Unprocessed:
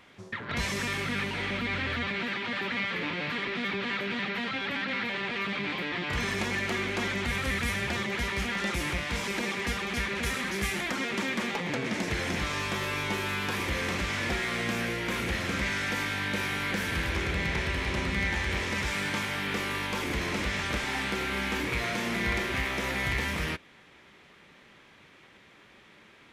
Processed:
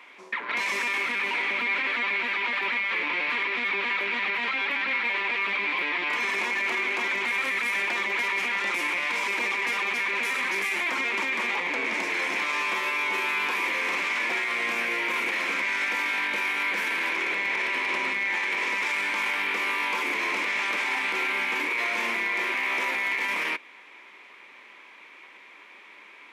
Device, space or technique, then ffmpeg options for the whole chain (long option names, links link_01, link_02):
laptop speaker: -af "highpass=frequency=280:width=0.5412,highpass=frequency=280:width=1.3066,equalizer=frequency=1000:width_type=o:width=0.45:gain=10,equalizer=frequency=2300:width_type=o:width=0.54:gain=12,alimiter=limit=-19dB:level=0:latency=1:release=14"